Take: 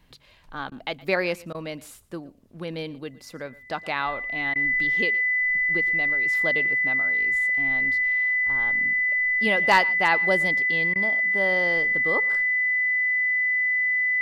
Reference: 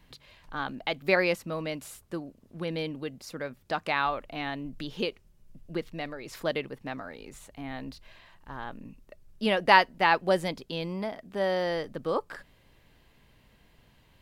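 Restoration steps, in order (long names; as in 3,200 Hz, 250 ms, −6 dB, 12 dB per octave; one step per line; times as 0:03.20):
clipped peaks rebuilt −9.5 dBFS
notch filter 2,000 Hz, Q 30
repair the gap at 0:00.70/0:01.53/0:04.54/0:10.94, 15 ms
echo removal 117 ms −21.5 dB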